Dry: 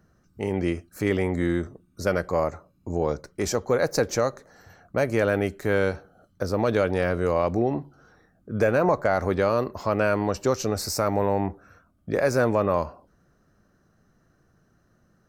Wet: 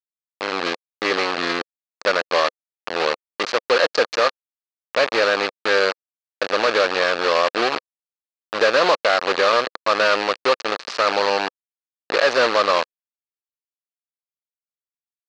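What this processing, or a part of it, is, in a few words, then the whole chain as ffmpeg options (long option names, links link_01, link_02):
hand-held game console: -af "acrusher=bits=3:mix=0:aa=0.000001,highpass=410,equalizer=frequency=510:width_type=q:width=4:gain=4,equalizer=frequency=1200:width_type=q:width=4:gain=7,equalizer=frequency=1700:width_type=q:width=4:gain=5,equalizer=frequency=2600:width_type=q:width=4:gain=5,equalizer=frequency=4300:width_type=q:width=4:gain=8,lowpass=frequency=5300:width=0.5412,lowpass=frequency=5300:width=1.3066,volume=2.5dB"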